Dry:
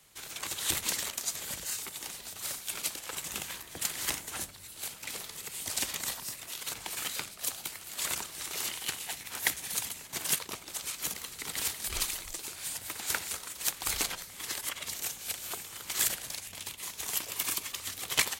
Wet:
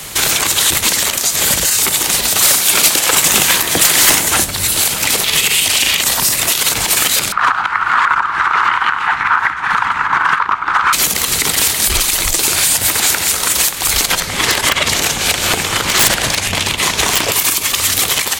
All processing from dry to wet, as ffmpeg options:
-filter_complex "[0:a]asettb=1/sr,asplit=3[s0][s1][s2];[s0]atrim=end=2.294[s3];[s1]atrim=start=2.29:end=4.27,asetpts=PTS-STARTPTS,afade=t=in:d=0.004:c=qsin,afade=t=out:st=1.976:d=0.004:c=qsin,highpass=f=150:p=1,aeval=exprs='(tanh(35.5*val(0)+0.05)-tanh(0.05))/35.5':c=same[s4];[s2]atrim=start=4.266[s5];[s3][s4]acrossfade=d=0.004:c1=hsin:c2=qsin[s6];[s6][s5]acrossfade=d=0.004:c1=qsin:c2=hsin,asettb=1/sr,asplit=3[s7][s8][s9];[s7]atrim=end=5.244[s10];[s8]atrim=start=5.24:end=6.03,asetpts=PTS-STARTPTS,afade=t=in:d=0.004:c=qsin,afade=t=out:st=0.786:d=0.004:c=qsin,equalizer=f=2800:t=o:w=0.99:g=11,asplit=2[s11][s12];[s12]adelay=39,volume=0.398[s13];[s11][s13]amix=inputs=2:normalize=0,atrim=end_sample=34839[s14];[s9]atrim=start=6.026[s15];[s10][s14]acrossfade=d=0.004:c1=hsin:c2=qsin[s16];[s16][s15]acrossfade=d=0.004:c1=qsin:c2=hsin,asettb=1/sr,asplit=3[s17][s18][s19];[s17]atrim=end=7.324[s20];[s18]atrim=start=7.32:end=10.93,asetpts=PTS-STARTPTS,afade=t=in:d=0.004:c=qsin,afade=t=out:st=3.606:d=0.004:c=qsin,lowpass=f=1400:t=q:w=3.9,lowshelf=f=750:t=q:w=3:g=-8.5[s21];[s19]atrim=start=10.926[s22];[s20][s21]acrossfade=d=0.004:c1=hsin:c2=qsin[s23];[s23][s22]acrossfade=d=0.004:c1=qsin:c2=hsin,asettb=1/sr,asplit=3[s24][s25][s26];[s24]atrim=end=14.204[s27];[s25]atrim=start=14.2:end=17.32,asetpts=PTS-STARTPTS,afade=t=in:d=0.004:c=qsin,afade=t=out:st=3.116:d=0.004:c=qsin,aemphasis=mode=reproduction:type=50fm,aeval=exprs='(mod(23.7*val(0)+1,2)-1)/23.7':c=same[s28];[s26]atrim=start=17.316[s29];[s27][s28]acrossfade=d=0.004:c1=hsin:c2=qsin[s30];[s30][s29]acrossfade=d=0.004:c1=qsin:c2=hsin,acompressor=threshold=0.00891:ratio=4,alimiter=level_in=50.1:limit=0.891:release=50:level=0:latency=1,volume=0.891"

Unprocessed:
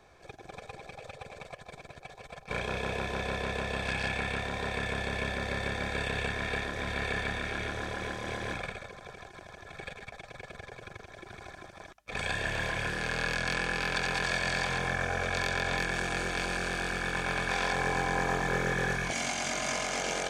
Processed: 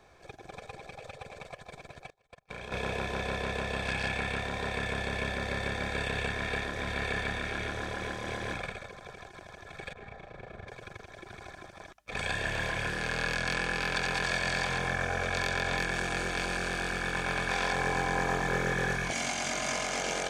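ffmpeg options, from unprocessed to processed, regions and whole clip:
-filter_complex "[0:a]asettb=1/sr,asplit=3[s0][s1][s2];[s0]atrim=end=2.104[s3];[s1]atrim=start=2.1:end=2.72,asetpts=PTS-STARTPTS,afade=t=in:d=0.004:c=qsin,afade=t=out:st=0.616:d=0.004:c=qsin,agate=range=0.0562:threshold=0.00708:ratio=16:release=100:detection=peak,acompressor=threshold=0.0141:ratio=10:attack=3.2:release=140:knee=1:detection=peak[s4];[s2]atrim=start=2.716[s5];[s3][s4]acrossfade=d=0.004:c1=hsin:c2=qsin[s6];[s6][s5]acrossfade=d=0.004:c1=qsin:c2=hsin,asettb=1/sr,asplit=3[s7][s8][s9];[s7]atrim=end=9.934[s10];[s8]atrim=start=9.93:end=10.68,asetpts=PTS-STARTPTS,afade=t=in:d=0.004:c=qsin,afade=t=out:st=0.746:d=0.004:c=qsin,lowpass=f=1100:p=1,asplit=2[s11][s12];[s12]adelay=34,volume=0.794[s13];[s11][s13]amix=inputs=2:normalize=0,atrim=end_sample=33075[s14];[s9]atrim=start=10.676[s15];[s10][s14]acrossfade=d=0.004:c1=hsin:c2=qsin[s16];[s16][s15]acrossfade=d=0.004:c1=qsin:c2=hsin"

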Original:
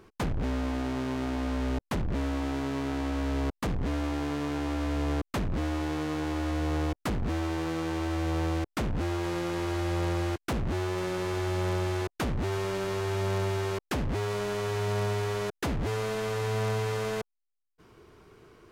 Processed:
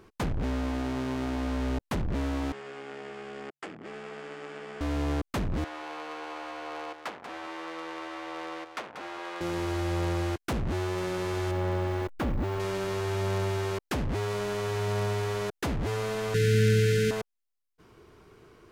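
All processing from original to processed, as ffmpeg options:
-filter_complex "[0:a]asettb=1/sr,asplit=3[s0][s1][s2];[s0]atrim=end=2.524[s3];[s1]atrim=start=2.52:end=4.81,asetpts=PTS-STARTPTS,afade=t=in:d=0.004:c=qsin,afade=t=out:st=2.286:d=0.004:c=qsin,aeval=exprs='val(0)*sin(2*PI*140*n/s)':c=same,highpass=440,equalizer=f=560:t=q:w=4:g=-8,equalizer=f=960:t=q:w=4:g=-9,equalizer=f=4000:t=q:w=4:g=-10,equalizer=f=6000:t=q:w=4:g=-10,lowpass=f=7600:w=0.5412,lowpass=f=7600:w=1.3066[s4];[s2]atrim=start=4.806[s5];[s3][s4]acrossfade=d=0.004:c1=hsin:c2=qsin[s6];[s6][s5]acrossfade=d=0.004:c1=qsin:c2=hsin,asettb=1/sr,asplit=3[s7][s8][s9];[s7]atrim=end=5.644[s10];[s8]atrim=start=5.64:end=9.41,asetpts=PTS-STARTPTS,afade=t=in:d=0.004:c=qsin,afade=t=out:st=3.766:d=0.004:c=qsin,highpass=690,adynamicsmooth=sensitivity=4:basefreq=3400,aecho=1:1:187:0.355,atrim=end_sample=166257[s11];[s9]atrim=start=9.406[s12];[s10][s11]acrossfade=d=0.004:c1=hsin:c2=qsin[s13];[s13][s12]acrossfade=d=0.004:c1=qsin:c2=hsin,asettb=1/sr,asplit=3[s14][s15][s16];[s14]atrim=end=11.514[s17];[s15]atrim=start=11.51:end=12.6,asetpts=PTS-STARTPTS,afade=t=in:d=0.004:c=qsin,afade=t=out:st=1.086:d=0.004:c=qsin,aeval=exprs='val(0)+0.5*0.00841*sgn(val(0))':c=same,equalizer=f=8500:w=0.33:g=-11.5,aecho=1:1:3.6:0.3,atrim=end_sample=48069[s18];[s16]atrim=start=12.596[s19];[s17][s18]acrossfade=d=0.004:c1=hsin:c2=qsin[s20];[s20][s19]acrossfade=d=0.004:c1=qsin:c2=hsin,asettb=1/sr,asplit=3[s21][s22][s23];[s21]atrim=end=16.344[s24];[s22]atrim=start=16.34:end=17.11,asetpts=PTS-STARTPTS,afade=t=in:d=0.004:c=qsin,afade=t=out:st=0.766:d=0.004:c=qsin,equalizer=f=170:t=o:w=0.43:g=14.5,acontrast=49,asuperstop=centerf=840:order=20:qfactor=0.91[s25];[s23]atrim=start=17.106[s26];[s24][s25]acrossfade=d=0.004:c1=hsin:c2=qsin[s27];[s27][s26]acrossfade=d=0.004:c1=qsin:c2=hsin"

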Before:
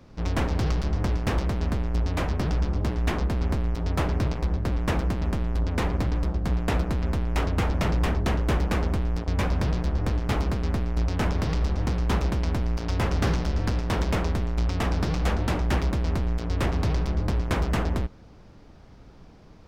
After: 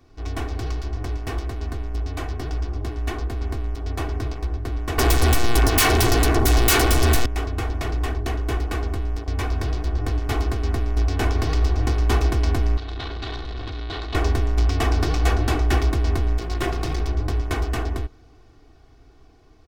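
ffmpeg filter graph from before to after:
-filter_complex "[0:a]asettb=1/sr,asplit=3[s0][s1][s2];[s0]atrim=end=4.984[s3];[s1]atrim=start=4.98:end=7.26,asetpts=PTS-STARTPTS,afade=t=in:d=0.004:c=qsin,afade=t=out:st=2.276:d=0.004:c=qsin,aemphasis=mode=production:type=cd,aeval=exprs='0.237*sin(PI/2*8.91*val(0)/0.237)':c=same[s4];[s2]atrim=start=7.256[s5];[s3][s4]acrossfade=d=0.004:c1=hsin:c2=qsin[s6];[s6][s5]acrossfade=d=0.004:c1=qsin:c2=hsin,asettb=1/sr,asplit=3[s7][s8][s9];[s7]atrim=end=12.774[s10];[s8]atrim=start=12.77:end=14.15,asetpts=PTS-STARTPTS,afade=t=in:d=0.004:c=qsin,afade=t=out:st=1.376:d=0.004:c=qsin,highshelf=f=1700:t=q:w=1.5:g=-6.5,volume=53.1,asoftclip=hard,volume=0.0188,lowpass=f=3900:t=q:w=4.9[s11];[s9]atrim=start=14.146[s12];[s10][s11]acrossfade=d=0.004:c1=hsin:c2=qsin[s13];[s13][s12]acrossfade=d=0.004:c1=qsin:c2=hsin,asettb=1/sr,asplit=3[s14][s15][s16];[s14]atrim=end=16.414[s17];[s15]atrim=start=16.41:end=17.01,asetpts=PTS-STARTPTS,afade=t=in:d=0.004:c=qsin,afade=t=out:st=0.596:d=0.004:c=qsin,highpass=f=43:w=0.5412,highpass=f=43:w=1.3066,aecho=1:1:5.6:0.73,atrim=end_sample=26460,aeval=exprs='clip(val(0),-1,0.0398)':c=same[s18];[s16]atrim=start=17.006[s19];[s17][s18]acrossfade=d=0.004:c1=hsin:c2=qsin[s20];[s20][s19]acrossfade=d=0.004:c1=qsin:c2=hsin,highshelf=f=6800:g=5,aecho=1:1:2.7:0.83,dynaudnorm=f=730:g=9:m=2.99,volume=0.531"

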